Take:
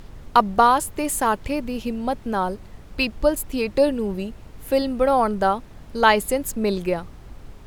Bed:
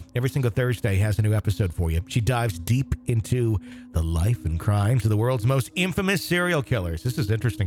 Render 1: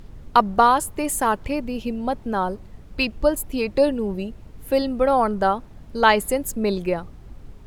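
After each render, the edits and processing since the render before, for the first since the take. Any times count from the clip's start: noise reduction 6 dB, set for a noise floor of -44 dBFS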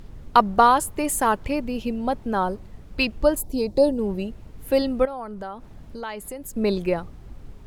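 3.40–3.99 s: high-order bell 1.9 kHz -13.5 dB; 5.05–6.56 s: compression 3:1, threshold -35 dBFS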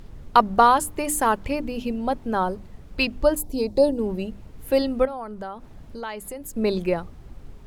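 hum notches 50/100/150/200/250/300 Hz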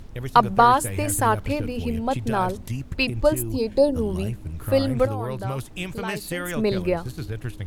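add bed -8 dB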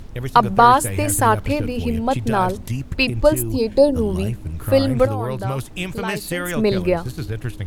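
trim +4.5 dB; peak limiter -1 dBFS, peak gain reduction 3 dB

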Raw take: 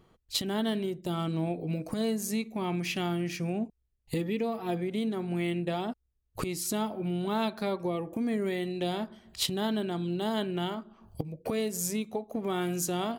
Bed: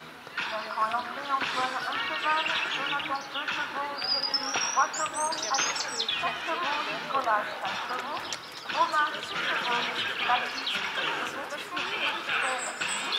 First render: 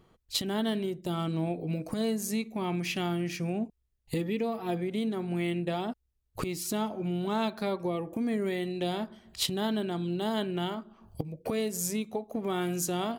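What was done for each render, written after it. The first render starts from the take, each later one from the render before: 6.39–7.54 s: decimation joined by straight lines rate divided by 2×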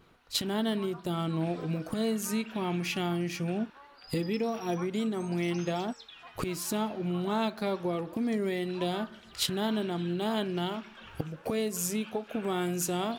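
add bed -21 dB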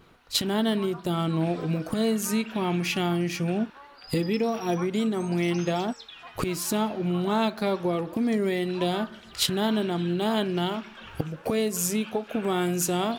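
trim +5 dB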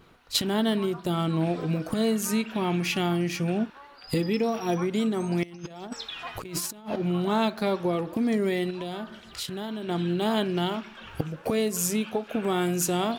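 5.43–6.96 s: compressor with a negative ratio -34 dBFS, ratio -0.5; 8.70–9.89 s: compression 5:1, threshold -31 dBFS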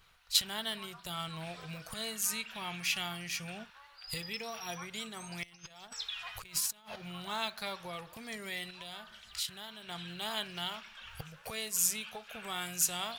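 amplifier tone stack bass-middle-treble 10-0-10

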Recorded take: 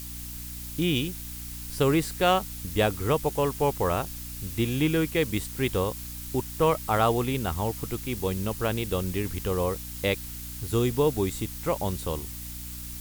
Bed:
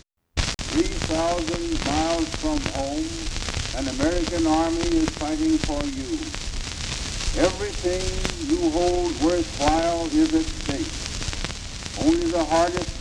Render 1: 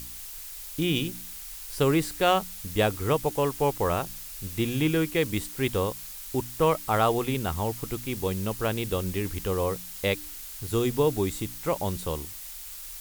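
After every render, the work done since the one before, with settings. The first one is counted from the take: de-hum 60 Hz, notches 5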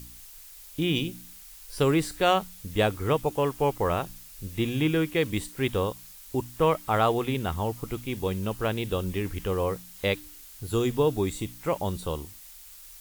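noise print and reduce 7 dB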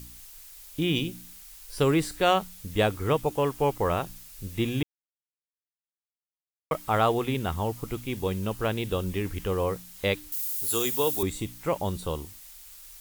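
4.83–6.71 s: mute; 10.32–11.23 s: RIAA curve recording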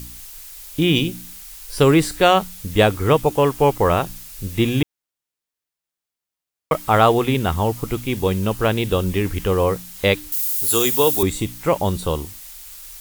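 trim +9 dB; peak limiter -2 dBFS, peak gain reduction 2 dB

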